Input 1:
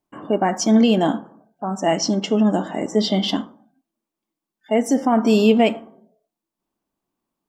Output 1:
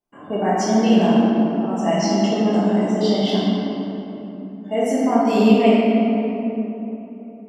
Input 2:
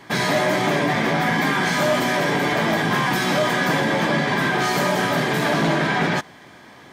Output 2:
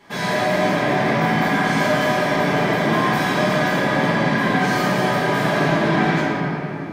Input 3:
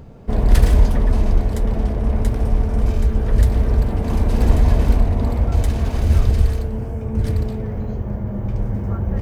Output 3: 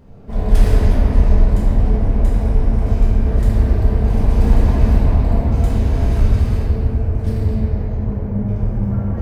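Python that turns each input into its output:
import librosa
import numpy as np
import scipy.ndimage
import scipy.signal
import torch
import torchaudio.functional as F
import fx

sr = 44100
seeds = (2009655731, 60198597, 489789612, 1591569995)

y = fx.room_shoebox(x, sr, seeds[0], volume_m3=190.0, walls='hard', distance_m=1.3)
y = y * 10.0 ** (-9.0 / 20.0)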